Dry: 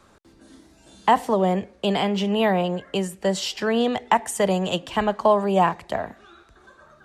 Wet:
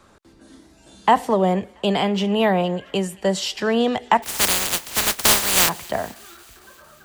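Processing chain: 4.22–5.68 spectral contrast lowered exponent 0.1; thin delay 0.227 s, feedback 69%, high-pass 1500 Hz, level -23.5 dB; gain +2 dB

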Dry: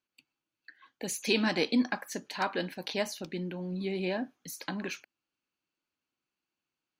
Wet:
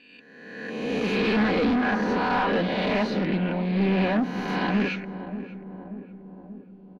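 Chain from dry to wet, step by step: spectral swells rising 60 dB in 1.30 s; high shelf 9600 Hz -10.5 dB; comb 4.1 ms, depth 48%; in parallel at +1 dB: limiter -18.5 dBFS, peak gain reduction 8 dB; on the sum: soft clip -24.5 dBFS, distortion -7 dB; air absorption 340 m; darkening echo 0.585 s, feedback 66%, low-pass 880 Hz, level -11 dB; on a send at -19 dB: reverb RT60 0.40 s, pre-delay 5 ms; on the sum: Doppler distortion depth 0.11 ms; gain +5.5 dB

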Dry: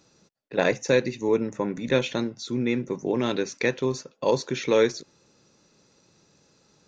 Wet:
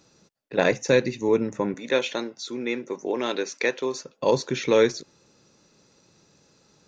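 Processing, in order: 1.74–4.04 HPF 370 Hz 12 dB/oct; gain +1.5 dB

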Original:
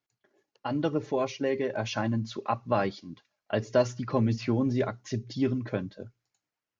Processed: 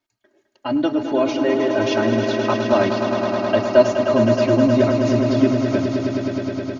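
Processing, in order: high shelf 5600 Hz -5.5 dB; comb 3.2 ms, depth 92%; swelling echo 0.105 s, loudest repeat 5, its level -8.5 dB; gain +5.5 dB

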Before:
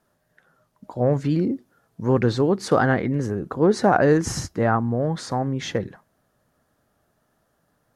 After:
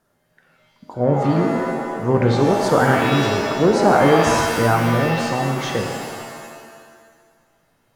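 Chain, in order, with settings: shimmer reverb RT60 1.6 s, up +7 st, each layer -2 dB, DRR 3 dB; gain +1 dB

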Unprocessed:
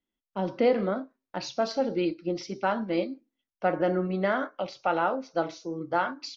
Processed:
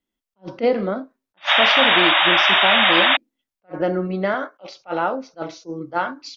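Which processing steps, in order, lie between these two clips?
1.37–3.17 painted sound noise 550–3800 Hz -20 dBFS; 4.34–4.81 HPF 300 Hz 12 dB/oct; attack slew limiter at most 400 dB/s; gain +4.5 dB

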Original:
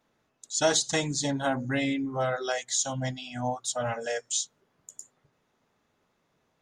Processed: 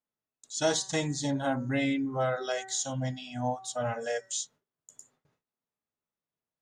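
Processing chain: de-hum 191.2 Hz, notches 10; harmonic-percussive split percussive -7 dB; gate with hold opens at -60 dBFS

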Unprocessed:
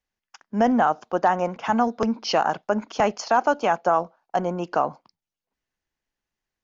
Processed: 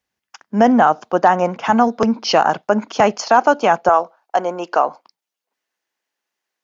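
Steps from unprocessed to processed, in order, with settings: HPF 83 Hz 12 dB/oct, from 3.89 s 410 Hz; gain +7 dB

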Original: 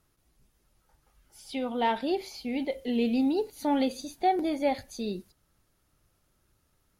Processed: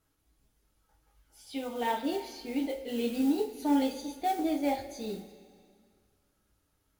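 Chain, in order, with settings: modulation noise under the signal 21 dB; two-slope reverb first 0.26 s, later 2.1 s, from -18 dB, DRR -1 dB; gain -7 dB

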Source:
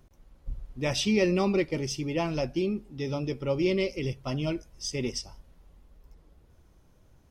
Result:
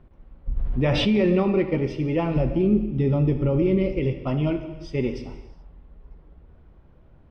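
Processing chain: 2.36–3.99 low shelf 270 Hz +11 dB; limiter -20 dBFS, peak gain reduction 8.5 dB; air absorption 460 m; non-linear reverb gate 0.45 s falling, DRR 7 dB; 0.56–1.4 fast leveller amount 70%; gain +7 dB

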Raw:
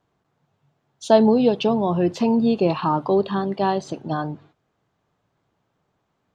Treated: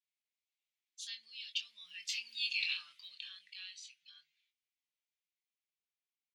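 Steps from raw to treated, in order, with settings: Doppler pass-by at 2.51, 11 m/s, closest 3.3 m; elliptic high-pass 2200 Hz, stop band 60 dB; doubler 23 ms -7 dB; gain +4 dB

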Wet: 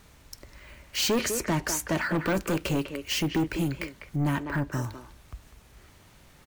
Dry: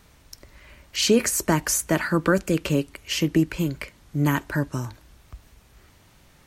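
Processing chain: careless resampling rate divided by 2×, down none, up hold; 1.19–2.18 high shelf 9600 Hz -11 dB; speakerphone echo 0.2 s, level -10 dB; soft clip -21 dBFS, distortion -8 dB; 4.16–4.72 high shelf 3600 Hz -9 dB

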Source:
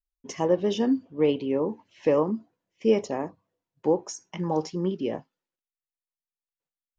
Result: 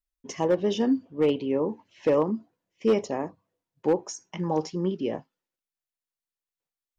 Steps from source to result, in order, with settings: hard clip -15 dBFS, distortion -21 dB

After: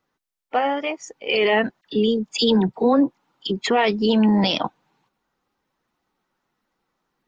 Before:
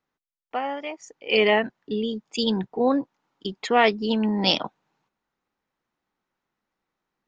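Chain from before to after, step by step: bin magnitudes rounded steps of 15 dB; 1.81–3.7 dispersion lows, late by 48 ms, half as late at 1400 Hz; maximiser +15.5 dB; gain -8 dB

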